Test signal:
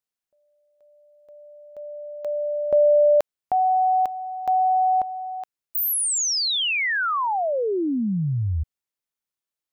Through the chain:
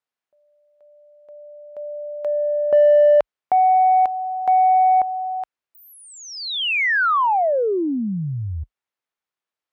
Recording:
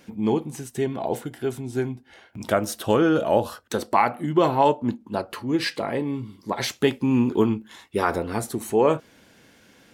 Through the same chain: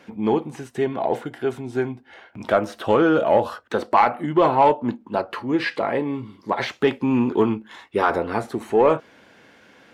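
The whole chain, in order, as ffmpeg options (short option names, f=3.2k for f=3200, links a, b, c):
-filter_complex "[0:a]highpass=f=42:w=0.5412,highpass=f=42:w=1.3066,acrossover=split=3900[a][b];[b]acompressor=threshold=-39dB:ratio=4:attack=1:release=60[c];[a][c]amix=inputs=2:normalize=0,highshelf=f=3.1k:g=-7,asplit=2[d][e];[e]asoftclip=type=hard:threshold=-15dB,volume=-12dB[f];[d][f]amix=inputs=2:normalize=0,asplit=2[g][h];[h]highpass=f=720:p=1,volume=11dB,asoftclip=type=tanh:threshold=-5dB[i];[g][i]amix=inputs=2:normalize=0,lowpass=f=2.7k:p=1,volume=-6dB"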